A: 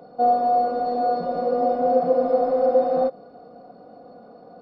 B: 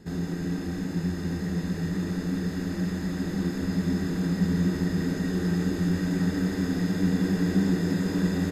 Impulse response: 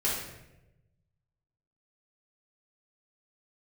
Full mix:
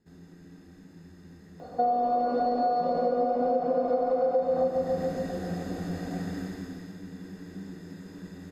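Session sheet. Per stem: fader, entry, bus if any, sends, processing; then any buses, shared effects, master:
+2.0 dB, 1.60 s, no send, echo send −6.5 dB, no processing
0:04.22 −19.5 dB → 0:04.69 −7.5 dB → 0:06.40 −7.5 dB → 0:07.01 −17 dB, 0.00 s, no send, no echo send, no processing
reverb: not used
echo: repeating echo 139 ms, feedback 60%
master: mains-hum notches 60/120/180 Hz; downward compressor 6 to 1, threshold −23 dBFS, peak gain reduction 13 dB

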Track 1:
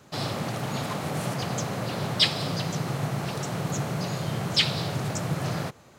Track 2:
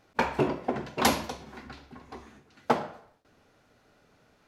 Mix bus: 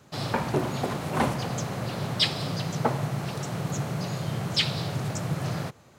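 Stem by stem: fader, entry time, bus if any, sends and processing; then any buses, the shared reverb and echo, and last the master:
−2.5 dB, 0.00 s, no send, no processing
−1.5 dB, 0.15 s, no send, low-pass filter 2,100 Hz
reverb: not used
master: parametric band 110 Hz +3 dB 1.4 octaves

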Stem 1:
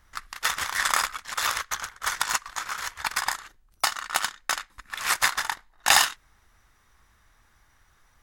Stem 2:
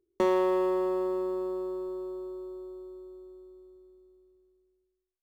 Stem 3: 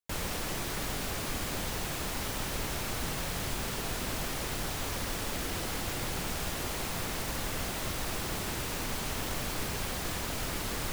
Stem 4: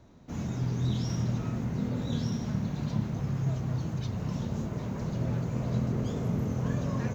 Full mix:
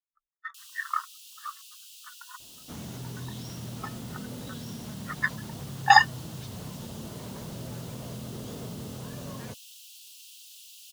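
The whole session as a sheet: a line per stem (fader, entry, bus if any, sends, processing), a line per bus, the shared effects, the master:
−0.5 dB, 0.00 s, no send, every bin expanded away from the loudest bin 4 to 1
muted
−9.0 dB, 0.45 s, no send, Butterworth high-pass 2,700 Hz 96 dB per octave; soft clipping −29 dBFS, distortion −25 dB
−0.5 dB, 2.40 s, no send, low-shelf EQ 220 Hz −7.5 dB; brickwall limiter −31 dBFS, peak gain reduction 9 dB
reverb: not used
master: no processing

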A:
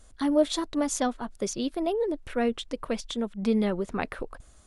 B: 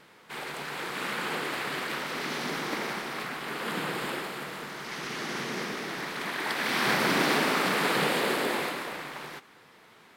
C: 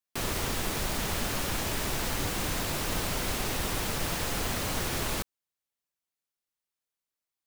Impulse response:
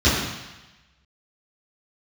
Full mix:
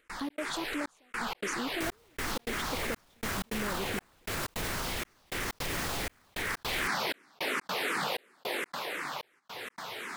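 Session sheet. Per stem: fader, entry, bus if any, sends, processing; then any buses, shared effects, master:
−7.5 dB, 0.00 s, no send, downward compressor, threshold −28 dBFS, peak gain reduction 11.5 dB
−3.0 dB, 0.00 s, no send, low-shelf EQ 320 Hz −10 dB; upward compression, threshold −32 dBFS; frequency shifter mixed with the dry sound −2.8 Hz
−0.5 dB, 1.65 s, no send, brickwall limiter −28 dBFS, peak gain reduction 10.5 dB; shaped tremolo triangle 0.78 Hz, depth 45%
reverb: not used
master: gate pattern ".xx.xxxxx.." 158 BPM −60 dB; envelope flattener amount 50%

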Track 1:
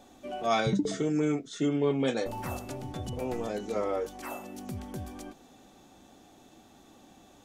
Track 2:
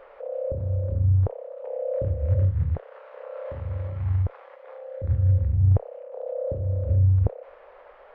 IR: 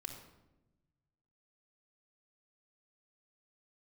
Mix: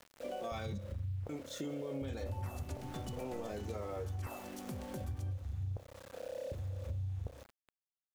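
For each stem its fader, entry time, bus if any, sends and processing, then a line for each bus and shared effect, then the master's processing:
+2.0 dB, 0.00 s, muted 0:00.78–0:01.29, no send, brickwall limiter −24.5 dBFS, peak gain reduction 10 dB
−4.5 dB, 0.00 s, send −18.5 dB, reverb reduction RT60 0.72 s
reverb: on, RT60 1.0 s, pre-delay 3 ms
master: tuned comb filter 68 Hz, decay 0.95 s, harmonics all, mix 50%; centre clipping without the shift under −48 dBFS; downward compressor 4 to 1, threshold −38 dBFS, peak gain reduction 11.5 dB

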